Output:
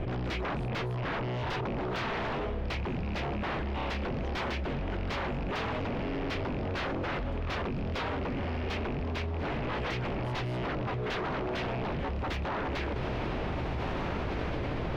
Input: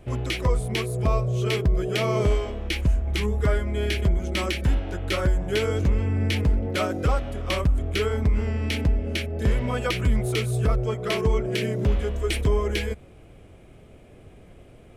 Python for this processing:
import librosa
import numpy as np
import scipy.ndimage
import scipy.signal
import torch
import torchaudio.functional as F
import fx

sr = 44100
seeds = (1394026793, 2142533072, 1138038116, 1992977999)

y = fx.rattle_buzz(x, sr, strikes_db=-26.0, level_db=-27.0)
y = 10.0 ** (-27.0 / 20.0) * (np.abs((y / 10.0 ** (-27.0 / 20.0) + 3.0) % 4.0 - 2.0) - 1.0)
y = fx.air_absorb(y, sr, metres=270.0)
y = fx.echo_diffused(y, sr, ms=1584, feedback_pct=48, wet_db=-14)
y = fx.env_flatten(y, sr, amount_pct=100)
y = y * librosa.db_to_amplitude(-2.5)